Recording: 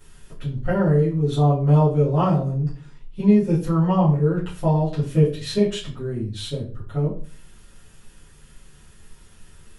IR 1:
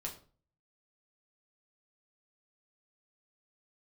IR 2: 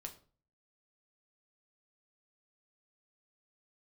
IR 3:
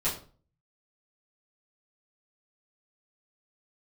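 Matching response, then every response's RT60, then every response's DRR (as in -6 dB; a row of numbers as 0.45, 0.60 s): 3; 0.40, 0.40, 0.40 s; -1.0, 3.5, -11.0 dB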